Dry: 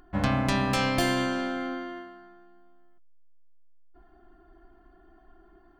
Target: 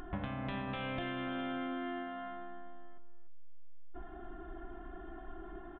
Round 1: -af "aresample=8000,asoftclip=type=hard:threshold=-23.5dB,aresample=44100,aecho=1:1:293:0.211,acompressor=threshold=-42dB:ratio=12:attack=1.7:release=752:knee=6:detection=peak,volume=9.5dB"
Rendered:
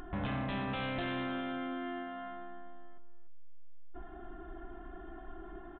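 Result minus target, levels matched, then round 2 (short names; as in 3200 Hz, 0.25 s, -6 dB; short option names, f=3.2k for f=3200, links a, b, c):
hard clip: distortion +32 dB
-af "aresample=8000,asoftclip=type=hard:threshold=-11.5dB,aresample=44100,aecho=1:1:293:0.211,acompressor=threshold=-42dB:ratio=12:attack=1.7:release=752:knee=6:detection=peak,volume=9.5dB"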